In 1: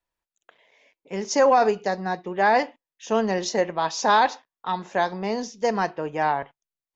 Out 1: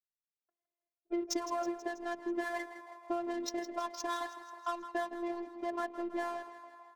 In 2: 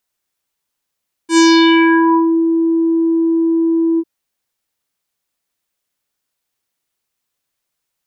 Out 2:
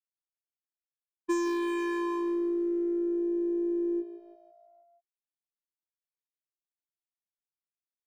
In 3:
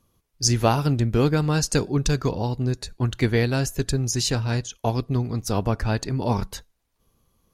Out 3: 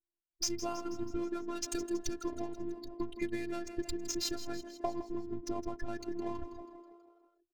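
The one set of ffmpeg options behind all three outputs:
-filter_complex "[0:a]highpass=f=40:p=1,afftdn=nr=28:nf=-28,adynamicsmooth=sensitivity=7:basefreq=780,alimiter=limit=-12.5dB:level=0:latency=1:release=46,acompressor=threshold=-31dB:ratio=8,asplit=2[a][b];[b]asplit=6[c][d][e][f][g][h];[c]adelay=162,afreqshift=57,volume=-13dB[i];[d]adelay=324,afreqshift=114,volume=-17.7dB[j];[e]adelay=486,afreqshift=171,volume=-22.5dB[k];[f]adelay=648,afreqshift=228,volume=-27.2dB[l];[g]adelay=810,afreqshift=285,volume=-31.9dB[m];[h]adelay=972,afreqshift=342,volume=-36.7dB[n];[i][j][k][l][m][n]amix=inputs=6:normalize=0[o];[a][o]amix=inputs=2:normalize=0,afftfilt=real='hypot(re,im)*cos(PI*b)':imag='0':win_size=512:overlap=0.75,adynamicequalizer=threshold=0.00282:dfrequency=670:dqfactor=1.1:tfrequency=670:tqfactor=1.1:attack=5:release=100:ratio=0.375:range=3:mode=cutabove:tftype=bell,volume=4dB"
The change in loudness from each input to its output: -14.5, -17.0, -15.0 LU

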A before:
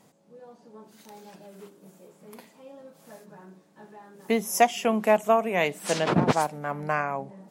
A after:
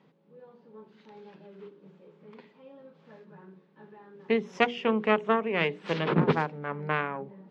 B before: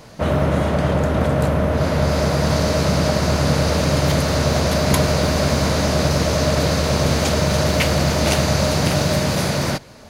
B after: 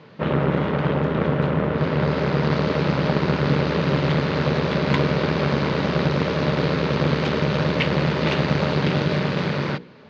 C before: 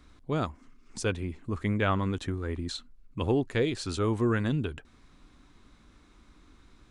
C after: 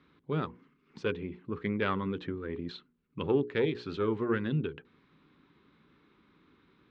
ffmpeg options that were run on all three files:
-af "aeval=exprs='0.668*(cos(1*acos(clip(val(0)/0.668,-1,1)))-cos(1*PI/2))+0.211*(cos(2*acos(clip(val(0)/0.668,-1,1)))-cos(2*PI/2))+0.0668*(cos(3*acos(clip(val(0)/0.668,-1,1)))-cos(3*PI/2))+0.0237*(cos(6*acos(clip(val(0)/0.668,-1,1)))-cos(6*PI/2))':c=same,highpass=140,equalizer=f=160:t=q:w=4:g=7,equalizer=f=410:t=q:w=4:g=6,equalizer=f=680:t=q:w=4:g=-9,lowpass=f=3.6k:w=0.5412,lowpass=f=3.6k:w=1.3066,bandreject=f=60:t=h:w=6,bandreject=f=120:t=h:w=6,bandreject=f=180:t=h:w=6,bandreject=f=240:t=h:w=6,bandreject=f=300:t=h:w=6,bandreject=f=360:t=h:w=6,bandreject=f=420:t=h:w=6,bandreject=f=480:t=h:w=6"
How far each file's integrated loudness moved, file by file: -3.0, -3.0, -3.0 LU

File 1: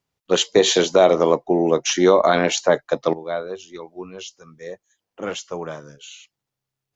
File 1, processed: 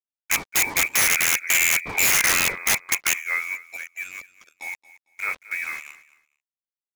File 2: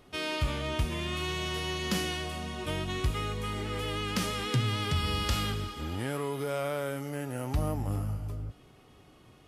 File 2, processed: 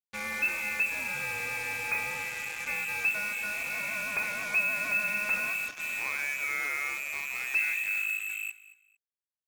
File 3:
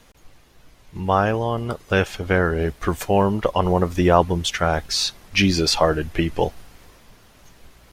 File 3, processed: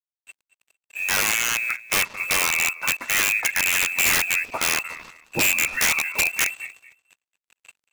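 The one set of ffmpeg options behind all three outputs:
-filter_complex "[0:a]lowpass=f=2.3k:t=q:w=0.5098,lowpass=f=2.3k:t=q:w=0.6013,lowpass=f=2.3k:t=q:w=0.9,lowpass=f=2.3k:t=q:w=2.563,afreqshift=-2700,acrusher=bits=5:mix=0:aa=0.5,asplit=2[a][b];[b]aecho=0:1:226|452:0.126|0.0277[c];[a][c]amix=inputs=2:normalize=0,aeval=exprs='(mod(4.47*val(0)+1,2)-1)/4.47':c=same"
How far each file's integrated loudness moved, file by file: -1.5, +3.0, +0.5 LU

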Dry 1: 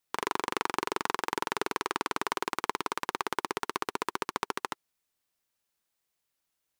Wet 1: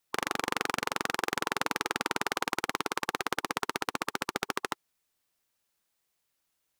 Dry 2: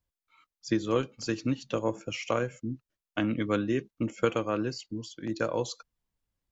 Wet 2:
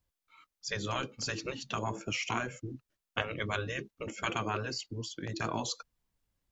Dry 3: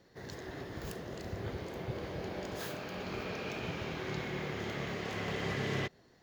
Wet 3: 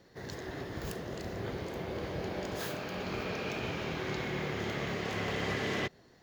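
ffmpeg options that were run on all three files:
-af "afftfilt=real='re*lt(hypot(re,im),0.126)':imag='im*lt(hypot(re,im),0.126)':win_size=1024:overlap=0.75,volume=3dB"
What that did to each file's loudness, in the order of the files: +1.0, -4.5, +2.5 LU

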